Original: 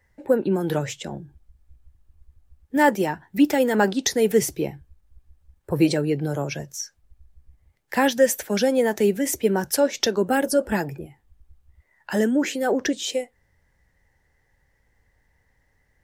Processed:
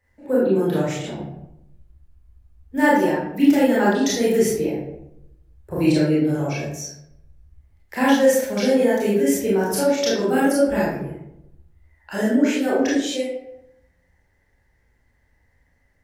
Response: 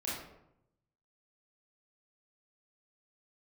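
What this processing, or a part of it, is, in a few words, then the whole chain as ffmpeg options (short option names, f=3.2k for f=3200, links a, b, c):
bathroom: -filter_complex "[1:a]atrim=start_sample=2205[a];[0:a][a]afir=irnorm=-1:irlink=0,volume=-1.5dB"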